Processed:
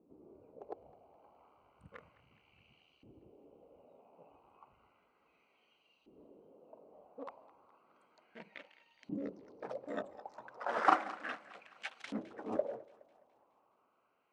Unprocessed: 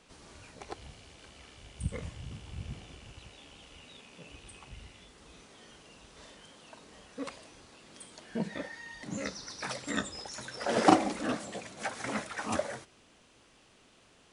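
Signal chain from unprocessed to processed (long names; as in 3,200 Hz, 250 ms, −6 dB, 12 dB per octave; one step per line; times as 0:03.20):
adaptive Wiener filter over 25 samples
auto-filter band-pass saw up 0.33 Hz 300–3,600 Hz
feedback echo with a high-pass in the loop 209 ms, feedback 61%, high-pass 680 Hz, level −18 dB
level +3.5 dB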